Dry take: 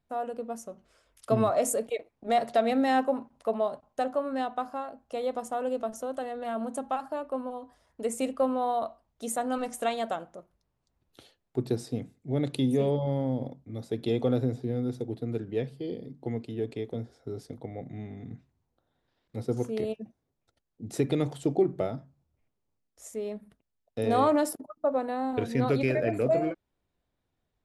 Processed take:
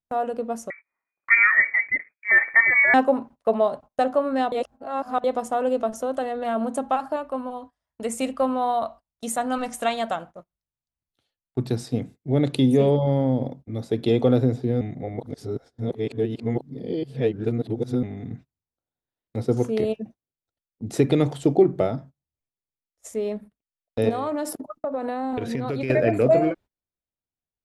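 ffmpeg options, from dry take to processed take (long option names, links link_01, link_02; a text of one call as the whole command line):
ffmpeg -i in.wav -filter_complex "[0:a]asettb=1/sr,asplit=3[link_01][link_02][link_03];[link_01]atrim=end=0.704[link_04];[link_02]atrim=start=0.7:end=2.94,asetpts=PTS-STARTPTS,afade=type=in:duration=0.004:curve=qsin,afade=type=out:start_time=2.236:duration=0.004:curve=qsin,lowpass=frequency=2100:width_type=q:width=0.5098,lowpass=frequency=2100:width_type=q:width=0.6013,lowpass=frequency=2100:width_type=q:width=0.9,lowpass=frequency=2100:width_type=q:width=2.563,afreqshift=-2500[link_05];[link_03]atrim=start=2.936[link_06];[link_04][link_05]acrossfade=duration=0.004:curve1=hsin:curve2=qsin[link_07];[link_07][link_06]acrossfade=duration=0.004:curve1=qsin:curve2=hsin,asettb=1/sr,asplit=3[link_08][link_09][link_10];[link_08]atrim=end=7.164[link_11];[link_09]atrim=start=7.16:end=11.94,asetpts=PTS-STARTPTS,afade=type=in:duration=0.004:curve=qsin,afade=type=out:start_time=4.776:duration=0.004:curve=qsin,equalizer=frequency=400:width_type=o:width=1.2:gain=-7[link_12];[link_10]atrim=start=11.936[link_13];[link_11][link_12]acrossfade=duration=0.004:curve1=hsin:curve2=qsin[link_14];[link_14][link_13]acrossfade=duration=0.004:curve1=qsin:curve2=hsin,asettb=1/sr,asplit=3[link_15][link_16][link_17];[link_15]atrim=end=24.094[link_18];[link_16]atrim=start=24.09:end=25.9,asetpts=PTS-STARTPTS,afade=type=in:duration=0.004:curve=qsin,afade=type=out:start_time=1.806:duration=0.004:curve=qsin,acompressor=threshold=-30dB:ratio=16:attack=3.2:release=140:knee=1:detection=peak[link_19];[link_17]atrim=start=25.896[link_20];[link_18][link_19]acrossfade=duration=0.004:curve1=hsin:curve2=qsin[link_21];[link_21][link_20]acrossfade=duration=0.004:curve1=qsin:curve2=hsin,asplit=5[link_22][link_23][link_24][link_25][link_26];[link_22]atrim=end=4.522[link_27];[link_23]atrim=start=4.518:end=5.242,asetpts=PTS-STARTPTS,areverse[link_28];[link_24]atrim=start=5.238:end=14.812[link_29];[link_25]atrim=start=14.808:end=18.032,asetpts=PTS-STARTPTS,areverse[link_30];[link_26]atrim=start=18.028[link_31];[link_27][link_28]acrossfade=duration=0.004:curve1=hsin:curve2=hsin[link_32];[link_32][link_29]acrossfade=duration=0.004:curve1=hsin:curve2=hsin[link_33];[link_33][link_30]acrossfade=duration=0.004:curve1=hsin:curve2=hsin[link_34];[link_34][link_31]acrossfade=duration=0.004:curve1=hsin:curve2=hsin,agate=range=-25dB:threshold=-48dB:ratio=16:detection=peak,highshelf=frequency=7300:gain=-5.5,volume=7.5dB" out.wav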